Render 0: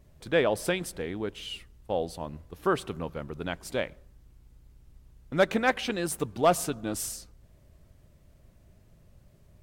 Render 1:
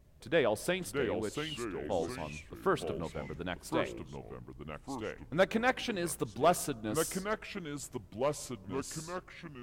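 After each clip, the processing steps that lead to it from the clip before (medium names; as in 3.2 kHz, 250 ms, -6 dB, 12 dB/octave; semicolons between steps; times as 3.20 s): ever faster or slower copies 558 ms, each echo -3 st, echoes 2, each echo -6 dB; trim -4.5 dB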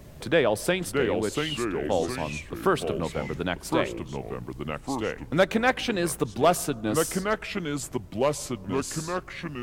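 three bands compressed up and down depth 40%; trim +8 dB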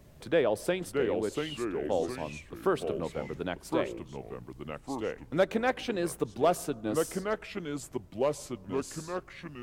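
dynamic bell 440 Hz, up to +6 dB, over -34 dBFS, Q 0.7; trim -9 dB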